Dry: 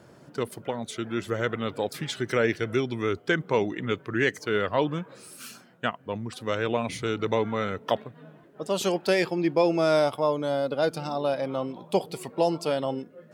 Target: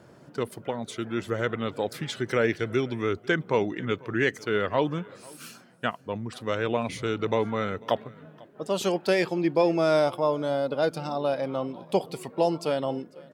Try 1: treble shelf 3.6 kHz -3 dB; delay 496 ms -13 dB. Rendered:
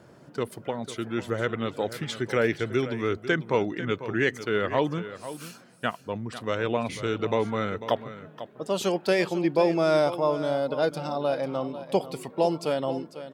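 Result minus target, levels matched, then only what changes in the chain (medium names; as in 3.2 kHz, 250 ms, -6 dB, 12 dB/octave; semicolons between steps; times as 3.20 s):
echo-to-direct +11 dB
change: delay 496 ms -24 dB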